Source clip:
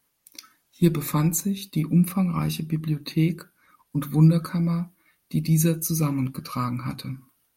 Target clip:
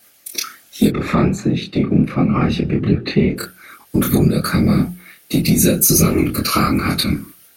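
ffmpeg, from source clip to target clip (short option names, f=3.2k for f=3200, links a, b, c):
-filter_complex "[0:a]acompressor=threshold=-26dB:ratio=12,asplit=3[a][b][c];[a]afade=t=out:st=0.88:d=0.02[d];[b]lowpass=2.1k,afade=t=in:st=0.88:d=0.02,afade=t=out:st=3.36:d=0.02[e];[c]afade=t=in:st=3.36:d=0.02[f];[d][e][f]amix=inputs=3:normalize=0,bandreject=f=1k:w=12,afftfilt=real='hypot(re,im)*cos(2*PI*random(0))':imag='hypot(re,im)*sin(2*PI*random(1))':win_size=512:overlap=0.75,highpass=f=63:p=1,lowshelf=f=320:g=-8,bandreject=f=60:t=h:w=6,bandreject=f=120:t=h:w=6,bandreject=f=180:t=h:w=6,flanger=delay=22.5:depth=6.7:speed=1.3,equalizer=f=990:w=4.3:g=-11.5,alimiter=level_in=31.5dB:limit=-1dB:release=50:level=0:latency=1,volume=-1dB"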